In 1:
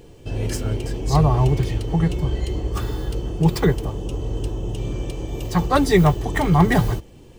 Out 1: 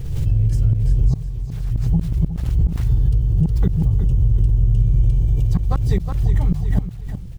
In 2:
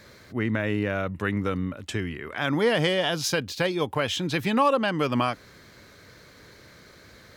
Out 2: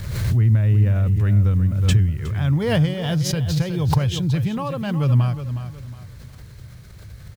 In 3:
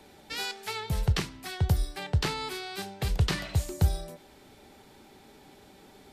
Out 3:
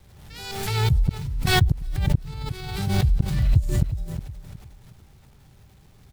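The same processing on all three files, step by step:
drawn EQ curve 130 Hz 0 dB, 250 Hz −22 dB, 460 Hz −23 dB
gate with flip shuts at −16 dBFS, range −33 dB
bit reduction 12 bits
downward compressor, threshold −26 dBFS
dynamic equaliser 1,800 Hz, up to −4 dB, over −59 dBFS, Q 0.72
on a send: repeating echo 365 ms, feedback 33%, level −10.5 dB
on the sum: background raised ahead of every attack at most 41 dB per second
normalise the peak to −6 dBFS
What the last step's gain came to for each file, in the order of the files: +13.0, +17.0, +11.5 decibels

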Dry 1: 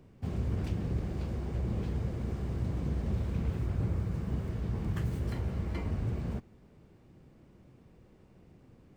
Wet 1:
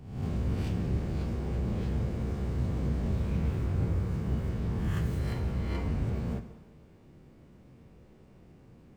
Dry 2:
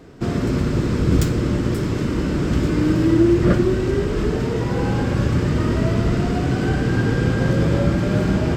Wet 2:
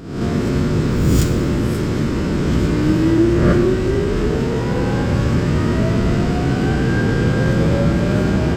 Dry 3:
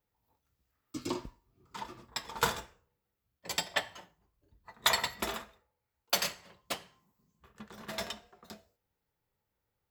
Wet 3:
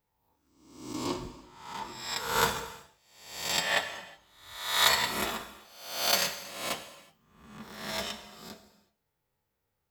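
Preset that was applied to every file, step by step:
peak hold with a rise ahead of every peak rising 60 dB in 0.76 s
reverb whose tail is shaped and stops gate 400 ms falling, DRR 8.5 dB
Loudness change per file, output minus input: +2.5, +2.5, +4.5 LU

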